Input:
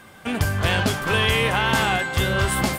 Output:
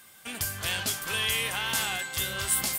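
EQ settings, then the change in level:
first-order pre-emphasis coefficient 0.9
+2.5 dB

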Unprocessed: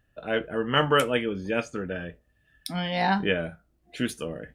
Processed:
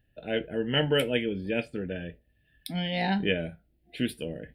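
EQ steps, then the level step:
phaser with its sweep stopped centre 2,800 Hz, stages 4
0.0 dB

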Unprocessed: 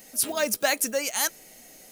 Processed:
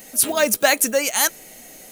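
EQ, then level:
parametric band 5,100 Hz −4.5 dB 0.37 octaves
+7.5 dB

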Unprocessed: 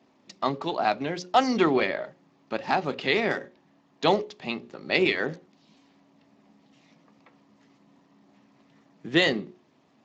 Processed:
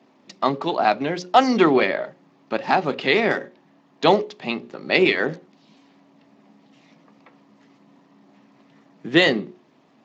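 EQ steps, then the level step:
high-pass filter 130 Hz 12 dB per octave
high-shelf EQ 6,000 Hz −7 dB
+6.0 dB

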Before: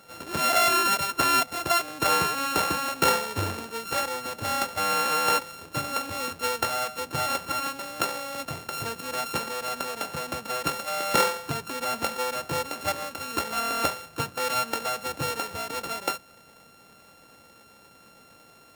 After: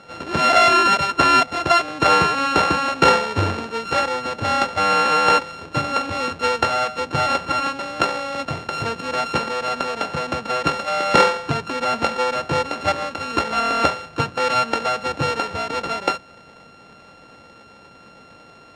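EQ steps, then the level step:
high-frequency loss of the air 120 metres
+9.0 dB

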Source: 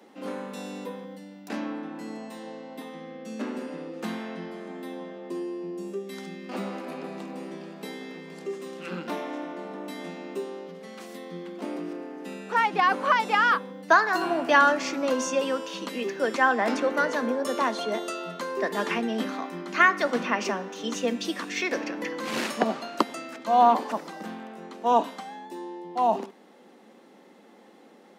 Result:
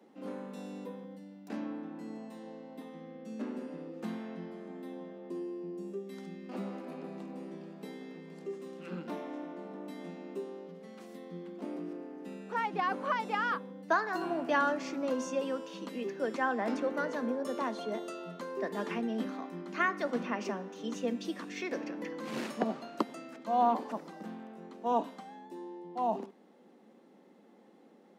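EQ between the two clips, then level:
tilt shelving filter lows +4 dB, about 790 Hz
parametric band 80 Hz +12.5 dB 0.86 octaves
−9.0 dB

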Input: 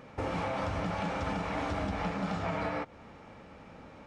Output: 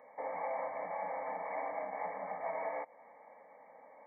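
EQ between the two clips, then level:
four-pole ladder high-pass 360 Hz, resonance 40%
linear-phase brick-wall low-pass 2,300 Hz
phaser with its sweep stopped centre 1,400 Hz, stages 6
+5.0 dB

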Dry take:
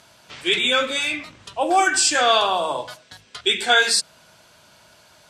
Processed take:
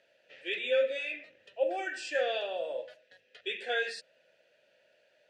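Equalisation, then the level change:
formant filter e
notch filter 8,000 Hz, Q 29
−1.5 dB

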